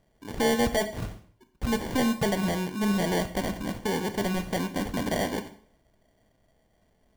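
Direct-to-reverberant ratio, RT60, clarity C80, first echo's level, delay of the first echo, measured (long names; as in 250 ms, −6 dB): 8.0 dB, 0.55 s, 16.0 dB, no echo audible, no echo audible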